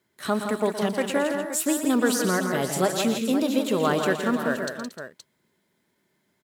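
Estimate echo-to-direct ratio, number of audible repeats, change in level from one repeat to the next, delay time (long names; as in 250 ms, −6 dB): −3.0 dB, 5, repeats not evenly spaced, 118 ms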